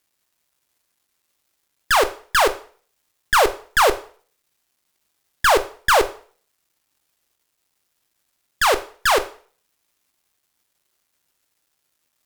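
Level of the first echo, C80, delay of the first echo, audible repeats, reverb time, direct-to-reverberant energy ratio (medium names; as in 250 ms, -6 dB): no echo, 19.5 dB, no echo, no echo, 0.45 s, 8.5 dB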